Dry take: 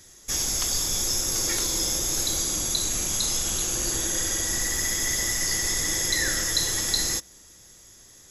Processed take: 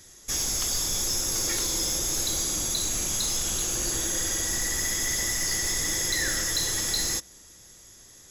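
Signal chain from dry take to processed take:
soft clipping −19.5 dBFS, distortion −17 dB

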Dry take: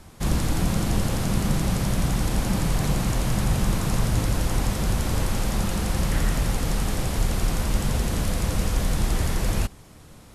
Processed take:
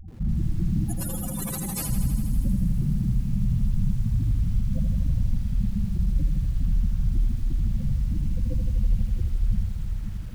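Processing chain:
in parallel at +1.5 dB: downward compressor 6 to 1, threshold −34 dBFS, peak gain reduction 16.5 dB
0:00.84–0:01.89: on the sum: spectral tilt +4 dB per octave
feedback delay with all-pass diffusion 529 ms, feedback 58%, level −11.5 dB
soft clipping −17.5 dBFS, distortion −14 dB
dynamic equaliser 6,100 Hz, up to −3 dB, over −35 dBFS, Q 0.74
on a send at −7.5 dB: Butterworth high-pass 2,000 Hz 72 dB per octave + convolution reverb RT60 1.1 s, pre-delay 80 ms
on the sum: gate on every frequency bin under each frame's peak −10 dB strong
feedback echo at a low word length 81 ms, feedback 80%, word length 8 bits, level −7.5 dB

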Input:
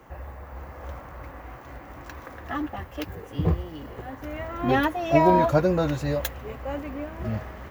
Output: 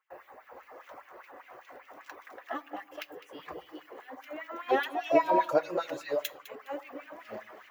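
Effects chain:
reverb reduction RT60 0.57 s
delay that swaps between a low-pass and a high-pass 103 ms, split 940 Hz, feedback 50%, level −9 dB
auto-filter high-pass sine 5 Hz 360–2,700 Hz
noise gate with hold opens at −41 dBFS
on a send at −18 dB: convolution reverb RT60 0.55 s, pre-delay 3 ms
on the sum: level −7 dB

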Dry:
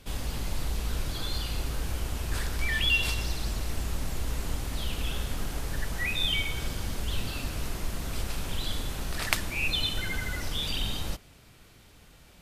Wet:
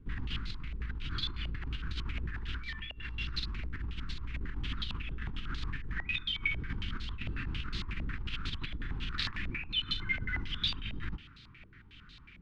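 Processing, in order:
compressor whose output falls as the input rises −33 dBFS, ratio −1
Butterworth band-reject 640 Hz, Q 0.61
high-frequency loss of the air 59 metres
hum removal 77.77 Hz, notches 35
low-pass on a step sequencer 11 Hz 620–4,000 Hz
level −3 dB

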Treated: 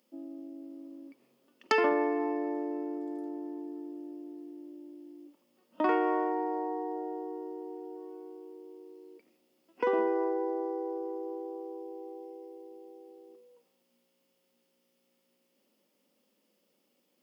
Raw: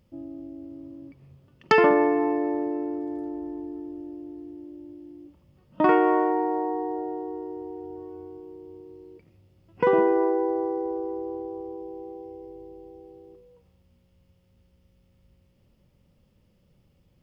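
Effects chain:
Chebyshev high-pass filter 240 Hz, order 4
high-shelf EQ 4,600 Hz +11 dB
in parallel at −2.5 dB: downward compressor, threshold −30 dBFS, peak gain reduction 16 dB
on the sum: level −9 dB

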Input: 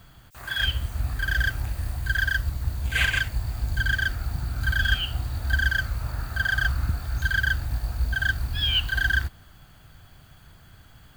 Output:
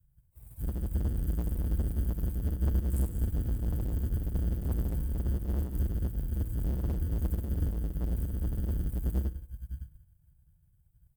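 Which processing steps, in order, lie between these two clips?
Chebyshev band-stop filter 170–8,300 Hz, order 4
low-shelf EQ 160 Hz +10.5 dB
on a send: repeating echo 563 ms, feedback 22%, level −14.5 dB
on the sum: tube saturation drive 29 dB, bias 0.3
high-shelf EQ 8,100 Hz +6 dB
convolution reverb RT60 1.1 s, pre-delay 63 ms, DRR 10 dB
in parallel at −12 dB: decimation without filtering 28×
on the sum: expander for the loud parts 2.5 to 1, over −42 dBFS
level +2 dB

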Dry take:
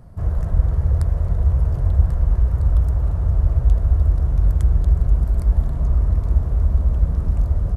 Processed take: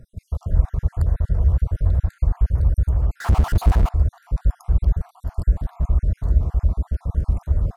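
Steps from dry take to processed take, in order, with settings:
time-frequency cells dropped at random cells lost 50%
0:03.20–0:03.89: power curve on the samples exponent 0.5

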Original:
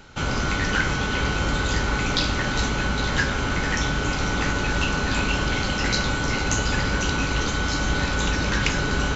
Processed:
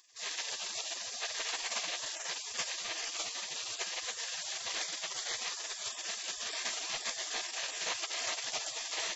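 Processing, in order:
gate on every frequency bin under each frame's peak −25 dB weak
dynamic equaliser 650 Hz, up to +4 dB, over −55 dBFS, Q 0.71

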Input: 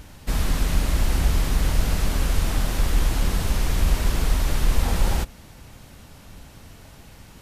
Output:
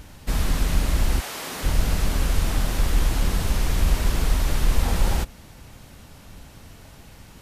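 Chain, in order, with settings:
0:01.19–0:01.63: high-pass filter 660 Hz → 280 Hz 12 dB per octave

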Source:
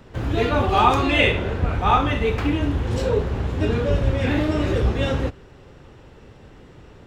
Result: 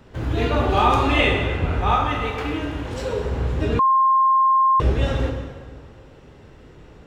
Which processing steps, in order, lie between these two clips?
0:01.95–0:03.25: low-shelf EQ 330 Hz −9 dB
dense smooth reverb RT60 1.7 s, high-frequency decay 0.75×, DRR 2 dB
0:03.79–0:04.80: beep over 1,060 Hz −10.5 dBFS
level −2.5 dB

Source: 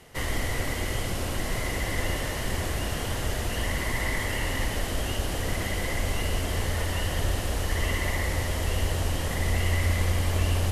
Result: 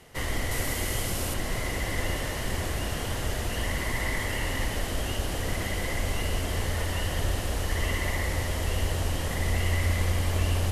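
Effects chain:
0:00.51–0:01.34: high-shelf EQ 6,200 Hz +9 dB
level −1 dB

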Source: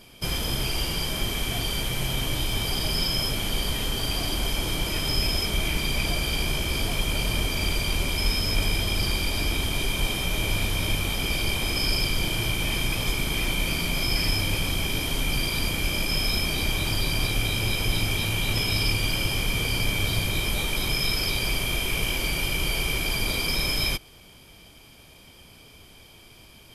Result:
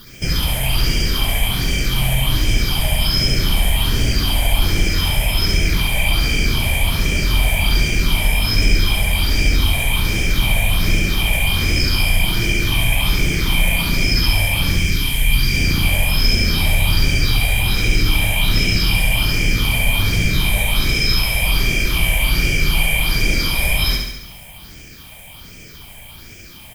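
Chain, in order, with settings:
0:14.77–0:15.53: parametric band 660 Hz −11.5 dB 1.4 octaves
in parallel at −0.5 dB: brickwall limiter −21 dBFS, peak gain reduction 10 dB
on the sum: bit-depth reduction 8 bits, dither triangular
all-pass phaser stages 6, 1.3 Hz, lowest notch 320–1,100 Hz
on a send: repeating echo 69 ms, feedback 59%, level −4 dB
on the sum: level +4 dB

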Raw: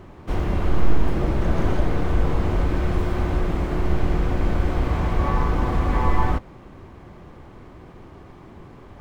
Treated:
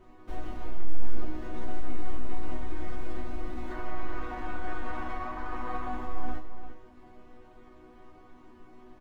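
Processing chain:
0:03.70–0:05.91: parametric band 1,300 Hz +11 dB 2.2 octaves
brickwall limiter −18 dBFS, peak gain reduction 12.5 dB
resonators tuned to a chord B3 major, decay 0.33 s
slap from a distant wall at 59 metres, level −9 dB
level +8.5 dB

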